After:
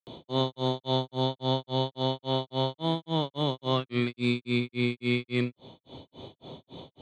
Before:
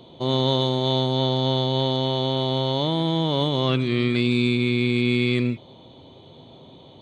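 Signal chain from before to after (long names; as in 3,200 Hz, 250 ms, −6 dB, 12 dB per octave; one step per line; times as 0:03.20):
granular cloud 247 ms, grains 3.6 per second, pitch spread up and down by 0 semitones
dynamic equaliser 1,000 Hz, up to +4 dB, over −37 dBFS, Q 0.77
multiband upward and downward compressor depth 40%
level −3.5 dB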